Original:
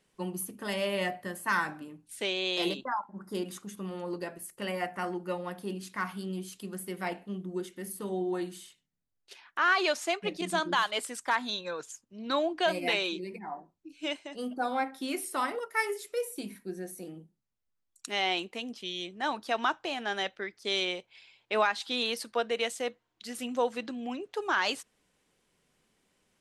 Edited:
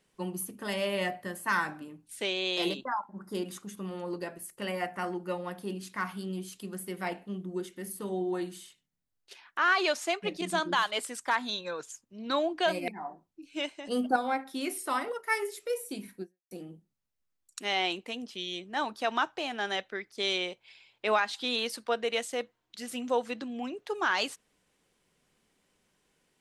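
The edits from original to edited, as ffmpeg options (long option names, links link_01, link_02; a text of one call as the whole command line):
ffmpeg -i in.wav -filter_complex "[0:a]asplit=5[link_01][link_02][link_03][link_04][link_05];[link_01]atrim=end=12.882[link_06];[link_02]atrim=start=13.348:end=14.342[link_07];[link_03]atrim=start=14.338:end=14.632,asetpts=PTS-STARTPTS,volume=6.5dB[link_08];[link_04]atrim=start=14.628:end=16.98,asetpts=PTS-STARTPTS,afade=type=out:start_time=2.062:duration=0.29:curve=exp[link_09];[link_05]atrim=start=16.98,asetpts=PTS-STARTPTS,afade=type=in:duration=0.004:curve=hsin[link_10];[link_06][link_07]acrossfade=duration=0.004:curve1=hsin:curve2=hsin[link_11];[link_11][link_08]acrossfade=duration=0.004:curve1=hsin:curve2=hsin[link_12];[link_09][link_10]concat=n=2:v=0:a=1[link_13];[link_12][link_13]acrossfade=duration=0.004:curve1=hsin:curve2=hsin" out.wav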